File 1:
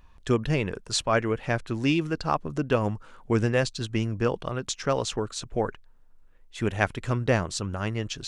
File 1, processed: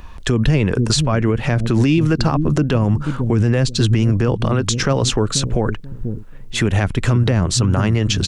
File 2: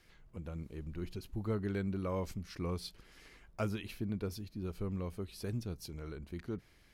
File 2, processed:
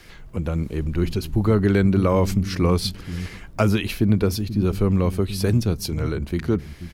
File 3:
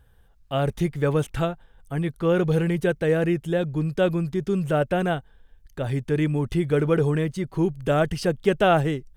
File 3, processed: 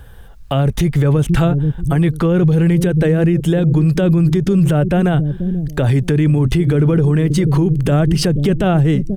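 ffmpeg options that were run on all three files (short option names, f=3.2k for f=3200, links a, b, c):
-filter_complex "[0:a]acrossover=split=280[a][b];[a]aecho=1:1:485|970|1455:0.376|0.0827|0.0182[c];[b]acompressor=threshold=-33dB:ratio=4[d];[c][d]amix=inputs=2:normalize=0,alimiter=level_in=24.5dB:limit=-1dB:release=50:level=0:latency=1,volume=-6dB"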